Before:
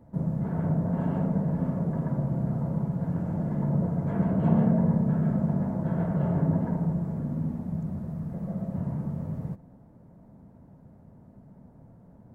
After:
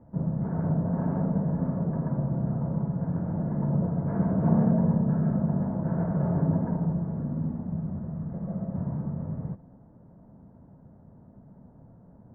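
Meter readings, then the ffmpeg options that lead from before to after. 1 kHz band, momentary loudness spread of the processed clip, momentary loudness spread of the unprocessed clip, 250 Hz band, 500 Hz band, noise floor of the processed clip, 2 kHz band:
0.0 dB, 10 LU, 10 LU, 0.0 dB, 0.0 dB, −54 dBFS, can't be measured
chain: -af "lowpass=frequency=1700:width=0.5412,lowpass=frequency=1700:width=1.3066"

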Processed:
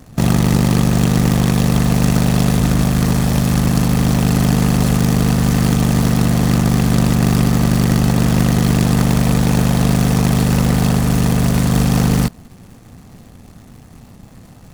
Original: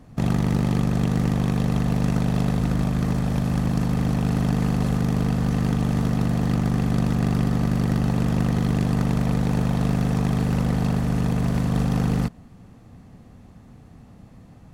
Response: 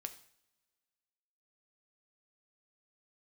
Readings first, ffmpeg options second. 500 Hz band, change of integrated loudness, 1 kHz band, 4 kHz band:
+8.0 dB, +8.0 dB, +8.5 dB, +13.5 dB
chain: -filter_complex "[0:a]highshelf=frequency=4100:gain=10.5,asplit=2[link_01][link_02];[link_02]acrusher=bits=5:dc=4:mix=0:aa=0.000001,volume=-4.5dB[link_03];[link_01][link_03]amix=inputs=2:normalize=0,volume=3.5dB"

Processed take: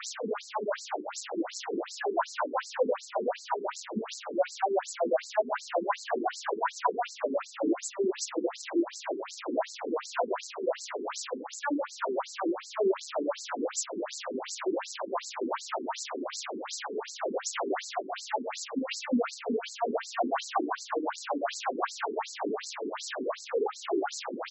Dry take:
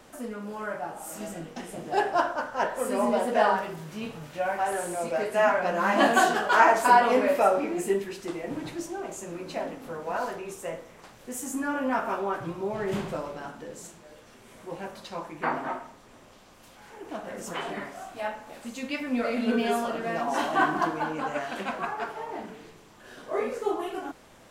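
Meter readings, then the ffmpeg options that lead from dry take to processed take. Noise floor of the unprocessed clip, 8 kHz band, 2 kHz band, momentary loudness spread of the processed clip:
−53 dBFS, +2.0 dB, −9.0 dB, 6 LU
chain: -filter_complex "[0:a]aeval=exprs='val(0)+0.5*0.0531*sgn(val(0))':channel_layout=same,equalizer=frequency=2000:width_type=o:width=1:gain=-5,equalizer=frequency=4000:width_type=o:width=1:gain=-4,equalizer=frequency=8000:width_type=o:width=1:gain=3,asplit=2[link_01][link_02];[link_02]adelay=90,highpass=300,lowpass=3400,asoftclip=type=hard:threshold=-16.5dB,volume=-9dB[link_03];[link_01][link_03]amix=inputs=2:normalize=0,acompressor=threshold=-23dB:ratio=6,afftfilt=real='re*between(b*sr/1024,300*pow(5800/300,0.5+0.5*sin(2*PI*2.7*pts/sr))/1.41,300*pow(5800/300,0.5+0.5*sin(2*PI*2.7*pts/sr))*1.41)':imag='im*between(b*sr/1024,300*pow(5800/300,0.5+0.5*sin(2*PI*2.7*pts/sr))/1.41,300*pow(5800/300,0.5+0.5*sin(2*PI*2.7*pts/sr))*1.41)':win_size=1024:overlap=0.75,volume=3.5dB"

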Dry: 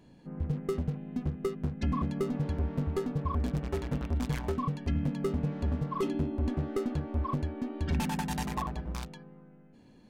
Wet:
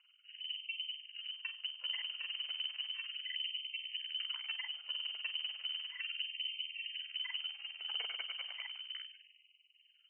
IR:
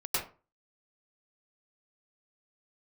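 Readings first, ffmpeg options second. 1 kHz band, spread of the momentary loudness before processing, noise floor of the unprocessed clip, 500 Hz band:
−23.5 dB, 4 LU, −57 dBFS, below −35 dB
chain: -filter_complex "[0:a]aeval=exprs='if(lt(val(0),0),0.251*val(0),val(0))':channel_layout=same,tremolo=f=20:d=0.857,asplit=2[link_01][link_02];[1:a]atrim=start_sample=2205[link_03];[link_02][link_03]afir=irnorm=-1:irlink=0,volume=-30dB[link_04];[link_01][link_04]amix=inputs=2:normalize=0,lowpass=frequency=2600:width_type=q:width=0.5098,lowpass=frequency=2600:width_type=q:width=0.6013,lowpass=frequency=2600:width_type=q:width=0.9,lowpass=frequency=2600:width_type=q:width=2.563,afreqshift=-3100,afftfilt=real='re*gte(b*sr/1024,330*pow(2000/330,0.5+0.5*sin(2*PI*0.34*pts/sr)))':imag='im*gte(b*sr/1024,330*pow(2000/330,0.5+0.5*sin(2*PI*0.34*pts/sr)))':win_size=1024:overlap=0.75,volume=-4.5dB"

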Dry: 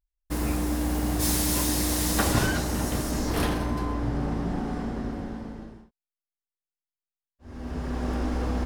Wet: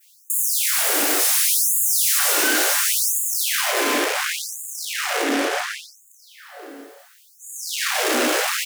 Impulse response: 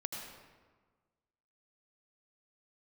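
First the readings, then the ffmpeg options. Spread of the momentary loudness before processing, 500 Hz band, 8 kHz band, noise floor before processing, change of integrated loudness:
13 LU, +6.5 dB, +13.0 dB, below −85 dBFS, +9.0 dB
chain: -filter_complex "[0:a]acrossover=split=130[link_01][link_02];[link_01]acompressor=threshold=-48dB:ratio=2.5[link_03];[link_03][link_02]amix=inputs=2:normalize=0,acrossover=split=110[link_04][link_05];[link_04]acrusher=bits=6:mix=0:aa=0.000001[link_06];[link_06][link_05]amix=inputs=2:normalize=0,asplit=2[link_07][link_08];[link_08]adelay=519,lowpass=frequency=3900:poles=1,volume=-19dB,asplit=2[link_09][link_10];[link_10]adelay=519,lowpass=frequency=3900:poles=1,volume=0.33,asplit=2[link_11][link_12];[link_12]adelay=519,lowpass=frequency=3900:poles=1,volume=0.33[link_13];[link_07][link_09][link_11][link_13]amix=inputs=4:normalize=0,asplit=2[link_14][link_15];[1:a]atrim=start_sample=2205[link_16];[link_15][link_16]afir=irnorm=-1:irlink=0,volume=-4.5dB[link_17];[link_14][link_17]amix=inputs=2:normalize=0,asplit=2[link_18][link_19];[link_19]highpass=frequency=720:poles=1,volume=44dB,asoftclip=type=tanh:threshold=-8.5dB[link_20];[link_18][link_20]amix=inputs=2:normalize=0,lowpass=frequency=1300:poles=1,volume=-6dB,equalizer=frequency=940:width=2:gain=-12,bandreject=frequency=60:width_type=h:width=6,bandreject=frequency=120:width_type=h:width=6,bandreject=frequency=180:width_type=h:width=6,bandreject=frequency=240:width_type=h:width=6,bandreject=frequency=300:width_type=h:width=6,asplit=2[link_21][link_22];[link_22]adelay=29,volume=-5dB[link_23];[link_21][link_23]amix=inputs=2:normalize=0,adynamicequalizer=threshold=0.00891:dfrequency=4200:dqfactor=1.4:tfrequency=4200:tqfactor=1.4:attack=5:release=100:ratio=0.375:range=2.5:mode=cutabove:tftype=bell,crystalizer=i=5.5:c=0,asoftclip=type=hard:threshold=-16.5dB,afftfilt=real='re*gte(b*sr/1024,240*pow(6700/240,0.5+0.5*sin(2*PI*0.7*pts/sr)))':imag='im*gte(b*sr/1024,240*pow(6700/240,0.5+0.5*sin(2*PI*0.7*pts/sr)))':win_size=1024:overlap=0.75"

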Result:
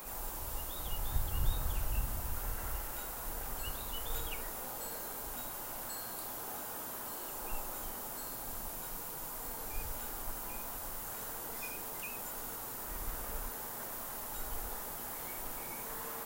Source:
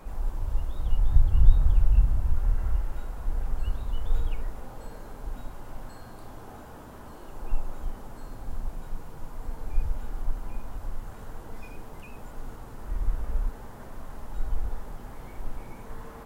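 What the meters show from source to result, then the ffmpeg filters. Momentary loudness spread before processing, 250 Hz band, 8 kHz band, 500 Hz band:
20 LU, −5.5 dB, can't be measured, −1.0 dB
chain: -af "aemphasis=mode=production:type=riaa,volume=1.5dB"

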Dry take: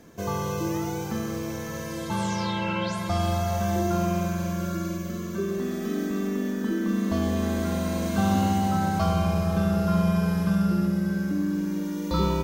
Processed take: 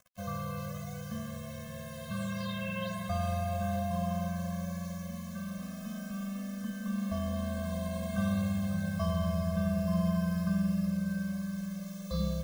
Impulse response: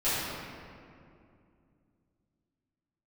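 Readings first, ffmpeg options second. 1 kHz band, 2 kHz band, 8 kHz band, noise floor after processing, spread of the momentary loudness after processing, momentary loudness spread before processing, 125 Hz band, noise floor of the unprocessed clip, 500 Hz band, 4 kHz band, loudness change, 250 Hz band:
−11.0 dB, −7.5 dB, −10.0 dB, −43 dBFS, 10 LU, 7 LU, −6.5 dB, −33 dBFS, −9.0 dB, −9.0 dB, −8.0 dB, −8.0 dB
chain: -af "acrusher=bits=6:mix=0:aa=0.000001,afftfilt=real='re*eq(mod(floor(b*sr/1024/250),2),0)':imag='im*eq(mod(floor(b*sr/1024/250),2),0)':win_size=1024:overlap=0.75,volume=-6.5dB"

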